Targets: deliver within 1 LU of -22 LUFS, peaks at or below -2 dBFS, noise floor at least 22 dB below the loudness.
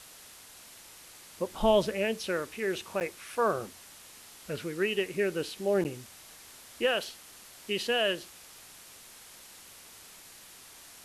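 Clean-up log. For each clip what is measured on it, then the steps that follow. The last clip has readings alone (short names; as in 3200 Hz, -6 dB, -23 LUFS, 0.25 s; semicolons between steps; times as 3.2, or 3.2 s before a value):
dropouts 2; longest dropout 8.8 ms; noise floor -52 dBFS; noise floor target -53 dBFS; loudness -30.5 LUFS; peak -12.0 dBFS; loudness target -22.0 LUFS
-> interpolate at 3/5.84, 8.8 ms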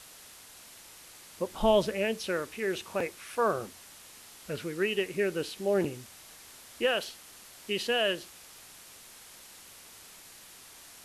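dropouts 0; noise floor -52 dBFS; noise floor target -53 dBFS
-> denoiser 6 dB, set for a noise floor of -52 dBFS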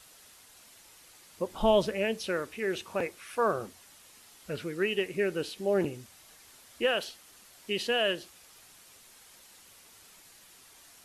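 noise floor -56 dBFS; loudness -30.5 LUFS; peak -12.0 dBFS; loudness target -22.0 LUFS
-> gain +8.5 dB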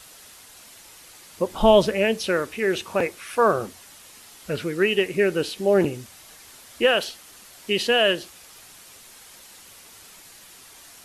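loudness -22.0 LUFS; peak -3.5 dBFS; noise floor -48 dBFS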